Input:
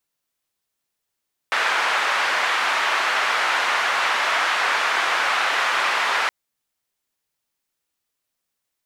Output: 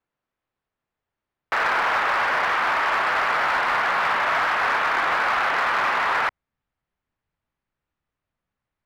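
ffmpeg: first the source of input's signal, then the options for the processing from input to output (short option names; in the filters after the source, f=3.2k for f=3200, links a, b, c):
-f lavfi -i "anoisesrc=c=white:d=4.77:r=44100:seed=1,highpass=f=1100,lowpass=f=1500,volume=-0.7dB"
-filter_complex "[0:a]lowpass=1.7k,asubboost=boost=3:cutoff=190,asplit=2[a][b];[b]aeval=exprs='0.0794*(abs(mod(val(0)/0.0794+3,4)-2)-1)':c=same,volume=-6dB[c];[a][c]amix=inputs=2:normalize=0"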